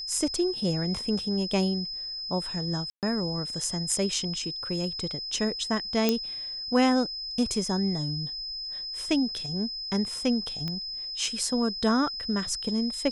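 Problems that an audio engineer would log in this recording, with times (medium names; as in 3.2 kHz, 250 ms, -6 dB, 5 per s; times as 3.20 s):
whine 5.1 kHz -33 dBFS
2.90–3.03 s: dropout 128 ms
6.09 s: pop -9 dBFS
10.68 s: pop -20 dBFS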